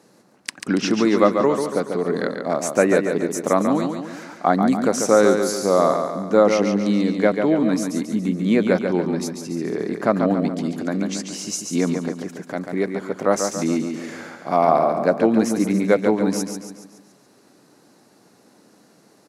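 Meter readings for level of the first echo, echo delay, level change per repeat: −6.0 dB, 141 ms, −6.0 dB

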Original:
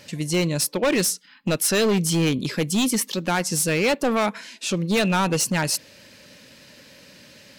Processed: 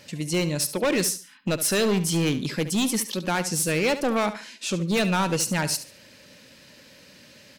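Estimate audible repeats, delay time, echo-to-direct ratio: 2, 71 ms, −12.5 dB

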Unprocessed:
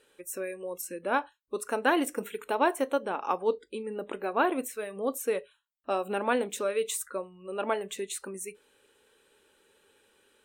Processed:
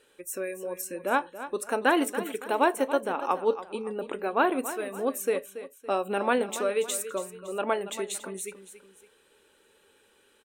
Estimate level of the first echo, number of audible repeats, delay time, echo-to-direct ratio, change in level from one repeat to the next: −13.0 dB, 2, 281 ms, −12.5 dB, −7.5 dB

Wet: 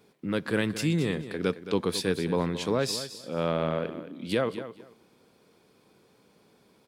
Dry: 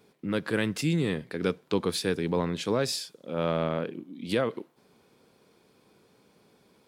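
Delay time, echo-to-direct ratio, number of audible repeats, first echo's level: 220 ms, −12.5 dB, 2, −12.5 dB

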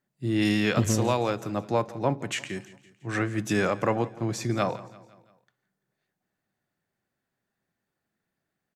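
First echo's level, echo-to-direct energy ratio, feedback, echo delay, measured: −19.5 dB, −18.0 dB, 52%, 170 ms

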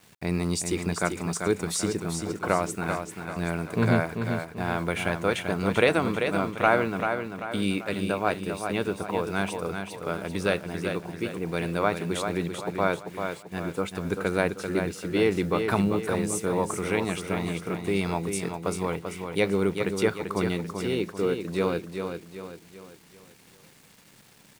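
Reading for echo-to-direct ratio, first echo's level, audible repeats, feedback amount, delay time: −5.5 dB, −6.5 dB, 4, 43%, 390 ms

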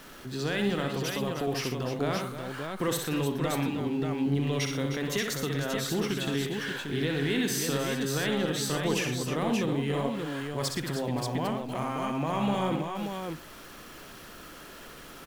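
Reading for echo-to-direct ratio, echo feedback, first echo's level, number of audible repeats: −1.0 dB, repeats not evenly spaced, −5.5 dB, 4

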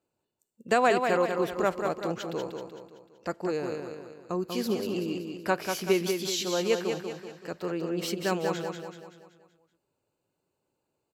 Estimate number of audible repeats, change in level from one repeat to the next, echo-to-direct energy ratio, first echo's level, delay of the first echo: 5, −6.5 dB, −4.5 dB, −5.5 dB, 190 ms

